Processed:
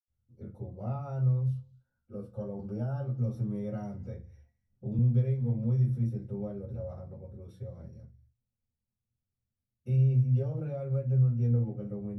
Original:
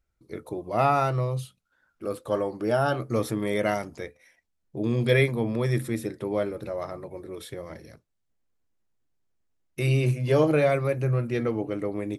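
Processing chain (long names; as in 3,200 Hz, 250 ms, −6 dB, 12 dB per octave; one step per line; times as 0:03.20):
downward compressor, threshold −24 dBFS, peak gain reduction 8.5 dB
convolution reverb RT60 0.25 s, pre-delay 76 ms
0:02.59–0:04.99: multiband upward and downward compressor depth 40%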